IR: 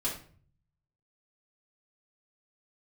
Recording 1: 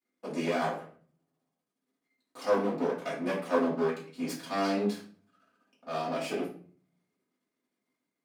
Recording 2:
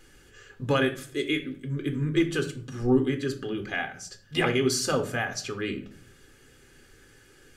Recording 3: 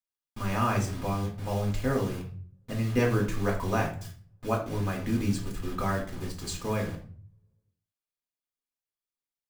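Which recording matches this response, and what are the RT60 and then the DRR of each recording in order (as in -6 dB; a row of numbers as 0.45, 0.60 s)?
1; 0.45, 0.45, 0.45 s; -6.0, 6.0, -1.0 dB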